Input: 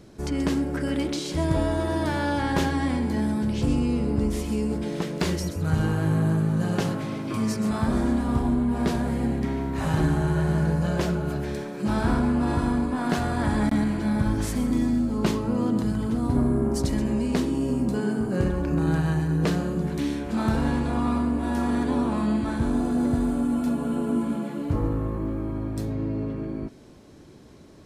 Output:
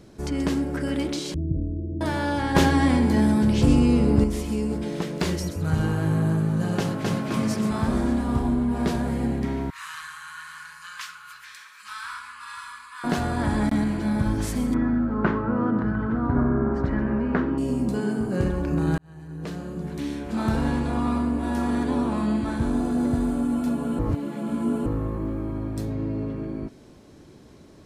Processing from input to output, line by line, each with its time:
1.34–2.01 s: Gaussian low-pass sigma 25 samples
2.55–4.24 s: gain +5.5 dB
6.78–7.28 s: echo throw 260 ms, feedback 55%, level -0.5 dB
9.70–13.04 s: elliptic high-pass 1.1 kHz
14.74–17.58 s: resonant low-pass 1.5 kHz, resonance Q 3.7
18.98–20.53 s: fade in
23.99–24.86 s: reverse

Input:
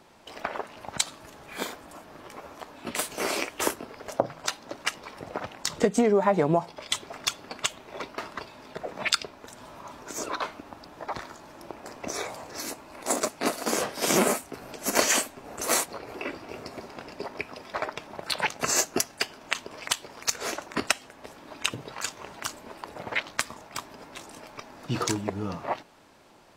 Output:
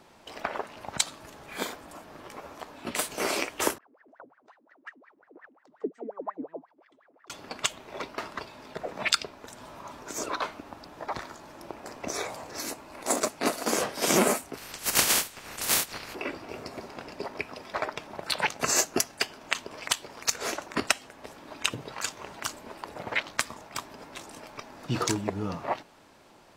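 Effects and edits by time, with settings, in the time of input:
3.78–7.30 s: wah-wah 5.6 Hz 250–1900 Hz, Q 19
14.56–16.13 s: spectral peaks clipped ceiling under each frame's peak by 23 dB

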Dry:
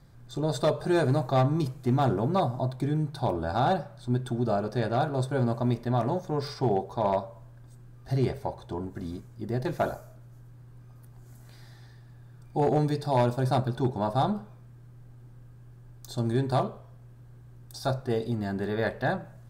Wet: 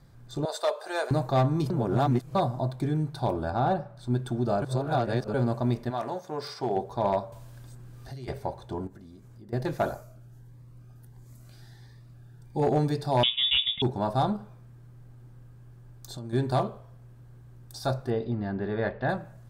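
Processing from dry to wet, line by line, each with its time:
0.45–1.11 s: high-pass 530 Hz 24 dB/octave
1.70–2.35 s: reverse
3.50–3.97 s: treble shelf 2.4 kHz -11 dB
4.62–5.34 s: reverse
5.89–6.75 s: high-pass 770 Hz -> 370 Hz 6 dB/octave
7.32–8.28 s: three bands compressed up and down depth 100%
8.87–9.53 s: compression 5:1, threshold -46 dBFS
10.03–12.63 s: Shepard-style phaser rising 1.5 Hz
13.23–13.82 s: frequency inversion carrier 3.6 kHz
14.36–16.33 s: compression, threshold -35 dBFS
18.10–19.09 s: distance through air 240 m

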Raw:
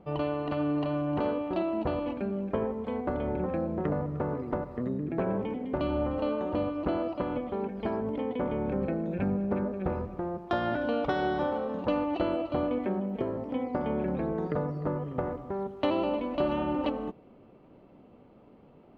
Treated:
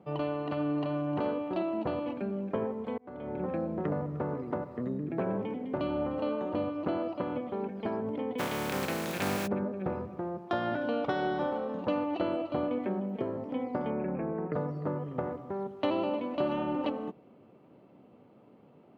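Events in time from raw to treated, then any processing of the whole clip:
2.98–3.47 s: fade in
8.38–9.46 s: spectral contrast reduction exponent 0.38
13.90–14.53 s: elliptic low-pass 2.6 kHz
whole clip: high-pass 97 Hz 24 dB/octave; trim -2 dB

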